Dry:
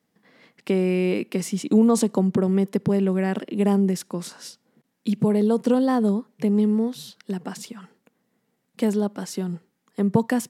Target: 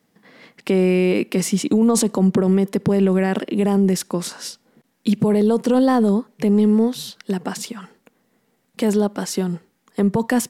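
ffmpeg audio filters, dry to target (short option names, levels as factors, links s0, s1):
-af "asubboost=boost=5.5:cutoff=55,alimiter=limit=0.141:level=0:latency=1:release=24,volume=2.51"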